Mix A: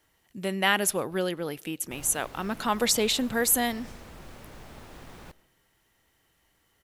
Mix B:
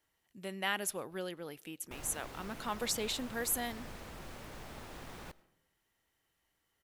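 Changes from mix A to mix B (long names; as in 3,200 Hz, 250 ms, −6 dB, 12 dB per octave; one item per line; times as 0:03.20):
speech −10.5 dB
master: add low-shelf EQ 400 Hz −3 dB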